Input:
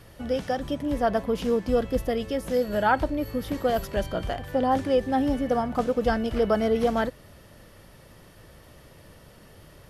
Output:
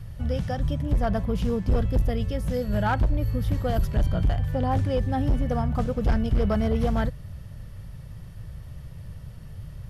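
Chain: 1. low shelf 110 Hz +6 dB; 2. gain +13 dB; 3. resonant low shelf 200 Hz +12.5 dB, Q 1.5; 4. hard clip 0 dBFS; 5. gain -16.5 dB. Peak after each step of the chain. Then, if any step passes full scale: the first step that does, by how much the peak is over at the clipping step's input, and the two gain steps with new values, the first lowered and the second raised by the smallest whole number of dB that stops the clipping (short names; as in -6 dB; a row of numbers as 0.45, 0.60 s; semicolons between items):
-8.5, +4.5, +10.0, 0.0, -16.5 dBFS; step 2, 10.0 dB; step 2 +3 dB, step 5 -6.5 dB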